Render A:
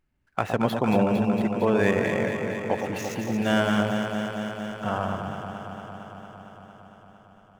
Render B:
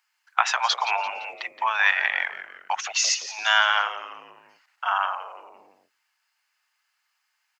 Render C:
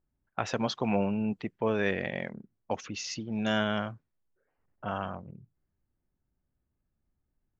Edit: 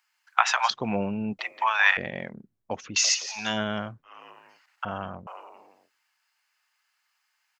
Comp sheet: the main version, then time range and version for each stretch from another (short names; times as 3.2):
B
0.7–1.39 from C
1.97–2.96 from C
3.47–4.15 from C, crossfade 0.24 s
4.85–5.27 from C
not used: A